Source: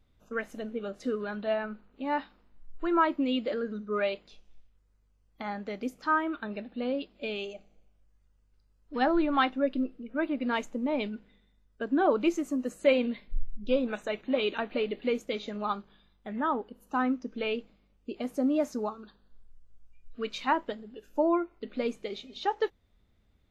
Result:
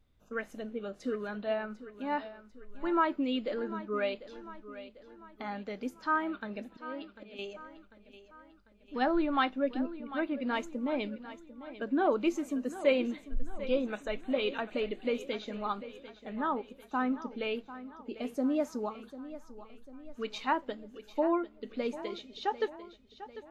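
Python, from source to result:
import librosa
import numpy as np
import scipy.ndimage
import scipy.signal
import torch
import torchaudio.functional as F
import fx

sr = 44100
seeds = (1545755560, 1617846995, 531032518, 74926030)

y = fx.auto_swell(x, sr, attack_ms=419.0, at=(6.15, 7.39))
y = fx.echo_feedback(y, sr, ms=746, feedback_pct=50, wet_db=-14.5)
y = y * librosa.db_to_amplitude(-3.0)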